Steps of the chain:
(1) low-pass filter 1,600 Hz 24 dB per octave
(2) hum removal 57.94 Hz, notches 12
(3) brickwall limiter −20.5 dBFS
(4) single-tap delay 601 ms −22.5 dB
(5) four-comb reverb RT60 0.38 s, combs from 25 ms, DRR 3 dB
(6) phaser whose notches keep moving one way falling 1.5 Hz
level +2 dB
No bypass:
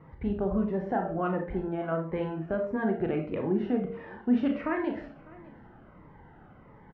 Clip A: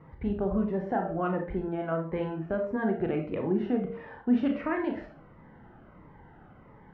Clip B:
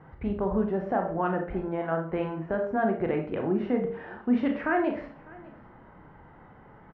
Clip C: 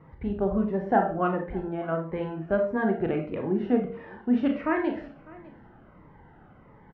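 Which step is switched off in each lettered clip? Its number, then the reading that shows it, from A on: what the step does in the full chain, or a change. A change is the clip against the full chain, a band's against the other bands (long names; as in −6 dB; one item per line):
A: 4, change in momentary loudness spread −3 LU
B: 6, 125 Hz band −3.0 dB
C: 3, change in crest factor +3.0 dB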